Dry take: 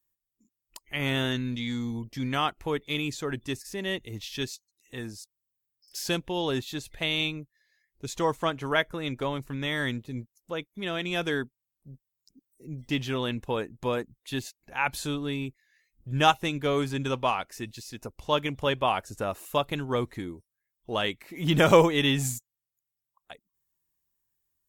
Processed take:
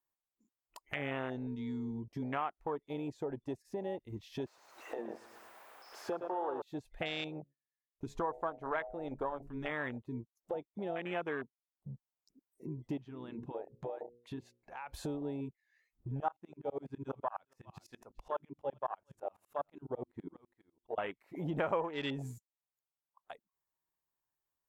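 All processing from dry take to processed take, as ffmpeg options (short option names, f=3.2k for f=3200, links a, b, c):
-filter_complex "[0:a]asettb=1/sr,asplit=3[a][b][c];[a]atrim=end=4.464[d];[b]atrim=start=4.46:end=6.62,asetpts=PTS-STARTPTS,afade=t=in:d=0.004:c=qsin,afade=t=out:st=2.156:d=0.004:c=qsin,aeval=exprs='val(0)+0.5*0.0237*sgn(val(0))':c=same,acrossover=split=330 2600:gain=0.126 1 0.224[e][f][g];[e][f][g]amix=inputs=3:normalize=0,aecho=1:1:114|228|342|456|570:0.447|0.205|0.0945|0.0435|0.02,atrim=end_sample=95256[h];[c]atrim=start=6.616[i];[d][h]acrossfade=d=0.004:c1=hsin:c2=qsin[j];[j][i]acrossfade=d=0.004:c1=qsin:c2=hsin,asettb=1/sr,asplit=3[k][l][m];[k]atrim=end=7.394[n];[l]atrim=start=7.39:end=9.72,asetpts=PTS-STARTPTS,afade=t=in:d=0.004:c=qsin,afade=t=out:st=2.326:d=0.004:c=qsin,bandreject=f=70.37:t=h:w=4,bandreject=f=140.74:t=h:w=4,bandreject=f=211.11:t=h:w=4,bandreject=f=281.48:t=h:w=4,bandreject=f=351.85:t=h:w=4,bandreject=f=422.22:t=h:w=4,bandreject=f=492.59:t=h:w=4,bandreject=f=562.96:t=h:w=4,bandreject=f=633.33:t=h:w=4,bandreject=f=703.7:t=h:w=4,asubboost=boost=8.5:cutoff=57,agate=range=-27dB:threshold=-59dB:ratio=16:release=100:detection=peak[o];[m]atrim=start=9.716[p];[n][o]acrossfade=d=0.004:c1=hsin:c2=qsin[q];[q][p]acrossfade=d=0.004:c1=qsin:c2=hsin,asettb=1/sr,asplit=3[r][s][t];[r]atrim=end=12.974[u];[s]atrim=start=12.97:end=14.94,asetpts=PTS-STARTPTS,afade=t=in:d=0.004:c=qsin,afade=t=out:st=1.966:d=0.004:c=qsin,highshelf=f=8.4k:g=-11,bandreject=f=60:t=h:w=6,bandreject=f=120:t=h:w=6,bandreject=f=180:t=h:w=6,bandreject=f=240:t=h:w=6,bandreject=f=300:t=h:w=6,bandreject=f=360:t=h:w=6,bandreject=f=420:t=h:w=6,bandreject=f=480:t=h:w=6,bandreject=f=540:t=h:w=6,acompressor=threshold=-45dB:ratio=2:attack=3.2:release=140:knee=1:detection=peak[v];[t]atrim=start=14.936[w];[u][v]acrossfade=d=0.004:c1=hsin:c2=qsin[x];[x][w]acrossfade=d=0.004:c1=qsin:c2=hsin,asettb=1/sr,asplit=3[y][z][aa];[y]atrim=end=16.204[ab];[z]atrim=start=16.2:end=20.98,asetpts=PTS-STARTPTS,afade=t=in:d=0.004:c=qsin,afade=t=out:st=4.776:d=0.004:c=qsin,bandreject=f=50:t=h:w=6,bandreject=f=100:t=h:w=6,bandreject=f=150:t=h:w=6,bandreject=f=200:t=h:w=6,bandreject=f=250:t=h:w=6,bandreject=f=300:t=h:w=6,bandreject=f=350:t=h:w=6,aecho=1:1:408:0.0944,atrim=end_sample=210798,aeval=exprs='val(0)*pow(10,-26*if(lt(mod(-12*n/s,1),2*abs(-12)/1000),1-mod(-12*n/s,1)/(2*abs(-12)/1000),(mod(-12*n/s,1)-2*abs(-12)/1000)/(1-2*abs(-12)/1000))/20)':c=same[ac];[aa]atrim=start=20.976[ad];[ab][ac]acrossfade=d=0.004:c1=hsin:c2=qsin[ae];[ae][ad]acrossfade=d=0.004:c1=qsin:c2=hsin,afwtdn=0.0282,equalizer=f=830:w=0.52:g=15,acompressor=threshold=-46dB:ratio=3,volume=3.5dB"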